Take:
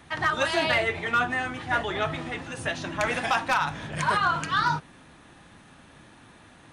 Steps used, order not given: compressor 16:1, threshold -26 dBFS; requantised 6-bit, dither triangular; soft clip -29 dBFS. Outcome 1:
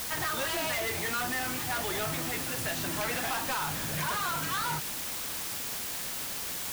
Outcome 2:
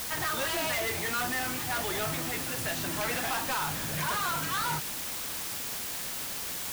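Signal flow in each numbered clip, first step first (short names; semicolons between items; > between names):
soft clip > requantised > compressor; soft clip > compressor > requantised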